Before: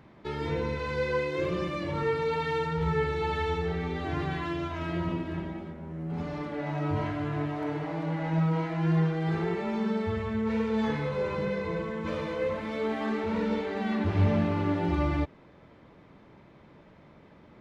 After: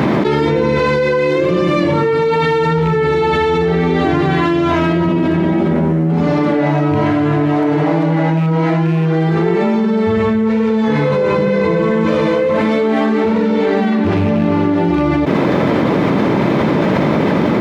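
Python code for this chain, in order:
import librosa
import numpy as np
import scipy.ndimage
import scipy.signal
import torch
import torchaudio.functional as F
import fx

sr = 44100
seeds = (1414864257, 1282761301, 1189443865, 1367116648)

y = fx.rattle_buzz(x, sr, strikes_db=-23.0, level_db=-31.0)
y = scipy.signal.sosfilt(scipy.signal.butter(2, 210.0, 'highpass', fs=sr, output='sos'), y)
y = fx.low_shelf(y, sr, hz=390.0, db=9.5)
y = fx.env_flatten(y, sr, amount_pct=100)
y = y * librosa.db_to_amplitude(6.5)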